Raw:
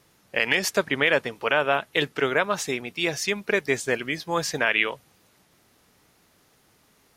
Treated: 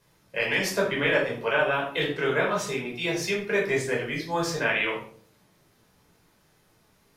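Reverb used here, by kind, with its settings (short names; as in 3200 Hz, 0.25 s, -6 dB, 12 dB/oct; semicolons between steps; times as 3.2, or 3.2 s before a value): shoebox room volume 590 m³, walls furnished, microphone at 5.1 m; gain -9.5 dB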